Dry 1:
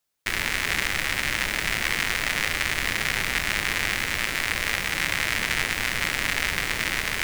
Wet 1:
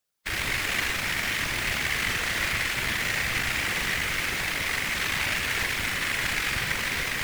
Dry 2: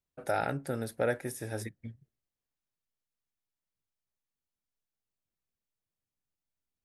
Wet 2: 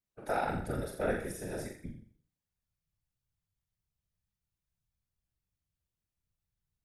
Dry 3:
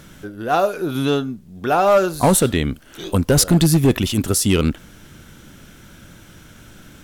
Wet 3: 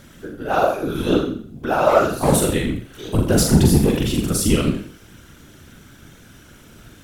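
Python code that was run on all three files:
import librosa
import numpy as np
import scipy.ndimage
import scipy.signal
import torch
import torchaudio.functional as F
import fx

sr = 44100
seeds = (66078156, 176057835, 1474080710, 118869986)

y = fx.room_flutter(x, sr, wall_m=7.2, rt60_s=0.51)
y = fx.hpss(y, sr, part='percussive', gain_db=-6)
y = fx.whisperise(y, sr, seeds[0])
y = F.gain(torch.from_numpy(y), -1.0).numpy()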